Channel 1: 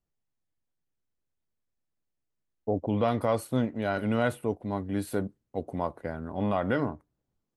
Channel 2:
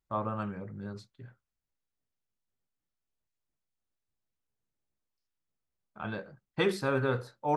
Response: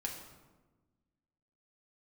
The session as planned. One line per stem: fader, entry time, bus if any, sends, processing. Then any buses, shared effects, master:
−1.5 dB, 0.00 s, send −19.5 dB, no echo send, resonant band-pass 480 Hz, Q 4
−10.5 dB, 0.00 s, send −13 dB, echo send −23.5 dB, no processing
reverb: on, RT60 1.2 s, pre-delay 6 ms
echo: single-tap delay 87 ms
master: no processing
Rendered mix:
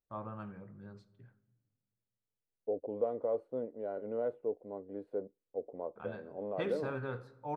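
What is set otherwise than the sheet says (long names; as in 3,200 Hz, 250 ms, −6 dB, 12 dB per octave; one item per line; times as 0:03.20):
stem 1: send off
master: extra high-shelf EQ 4,400 Hz −11.5 dB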